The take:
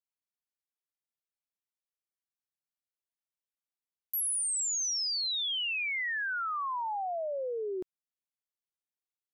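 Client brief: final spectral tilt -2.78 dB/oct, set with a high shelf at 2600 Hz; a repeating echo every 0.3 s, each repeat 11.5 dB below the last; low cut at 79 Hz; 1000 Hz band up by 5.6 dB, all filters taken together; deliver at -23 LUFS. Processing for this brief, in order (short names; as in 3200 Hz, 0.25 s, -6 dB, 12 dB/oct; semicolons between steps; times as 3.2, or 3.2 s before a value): HPF 79 Hz; bell 1000 Hz +7.5 dB; high shelf 2600 Hz -3 dB; feedback echo 0.3 s, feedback 27%, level -11.5 dB; gain +7 dB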